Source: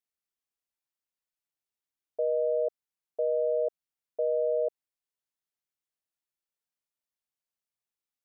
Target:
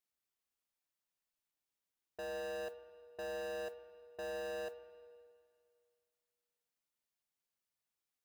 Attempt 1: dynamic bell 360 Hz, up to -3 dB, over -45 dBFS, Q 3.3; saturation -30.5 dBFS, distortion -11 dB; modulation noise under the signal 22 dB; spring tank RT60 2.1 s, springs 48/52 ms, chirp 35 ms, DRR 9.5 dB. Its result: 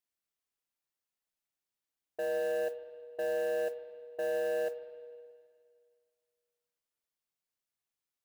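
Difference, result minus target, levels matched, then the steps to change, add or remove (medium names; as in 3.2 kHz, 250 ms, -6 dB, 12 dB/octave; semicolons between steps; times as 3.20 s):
saturation: distortion -6 dB
change: saturation -41.5 dBFS, distortion -5 dB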